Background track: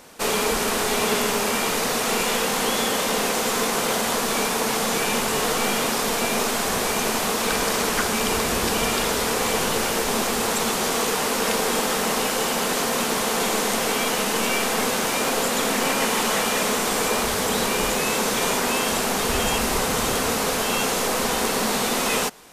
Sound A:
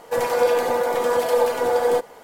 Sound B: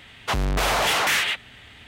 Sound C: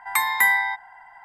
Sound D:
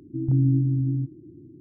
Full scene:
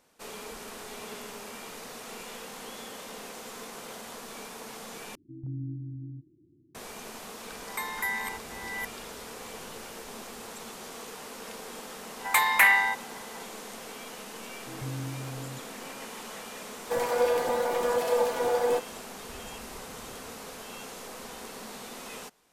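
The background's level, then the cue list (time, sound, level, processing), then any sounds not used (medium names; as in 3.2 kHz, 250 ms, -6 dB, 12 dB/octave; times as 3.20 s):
background track -19.5 dB
5.15 s: replace with D -16 dB
7.62 s: add C -13 dB + chunks repeated in reverse 410 ms, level -5 dB
12.19 s: add C -1 dB + loudspeaker Doppler distortion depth 0.21 ms
14.53 s: add D -16 dB
16.79 s: add A -6.5 dB
not used: B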